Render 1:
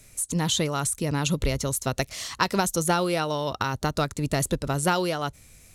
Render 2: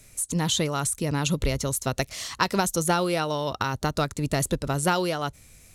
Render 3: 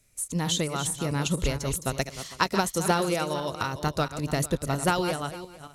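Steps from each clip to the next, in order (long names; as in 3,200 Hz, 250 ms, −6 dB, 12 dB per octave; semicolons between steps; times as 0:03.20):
no processing that can be heard
feedback delay that plays each chunk backwards 227 ms, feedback 49%, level −8 dB; expander for the loud parts 1.5 to 1, over −45 dBFS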